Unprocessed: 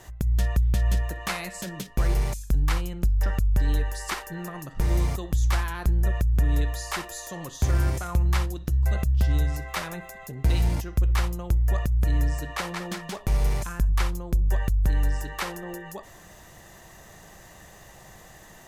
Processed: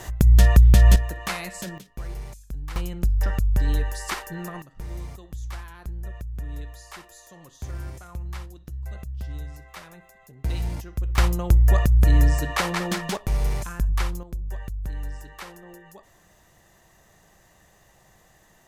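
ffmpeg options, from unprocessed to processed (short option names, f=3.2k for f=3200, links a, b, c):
-af "asetnsamples=n=441:p=0,asendcmd='0.96 volume volume 0.5dB;1.78 volume volume -11dB;2.76 volume volume 1dB;4.62 volume volume -11.5dB;10.44 volume volume -5dB;11.18 volume volume 6.5dB;13.17 volume volume -0.5dB;14.23 volume volume -9dB',volume=9.5dB"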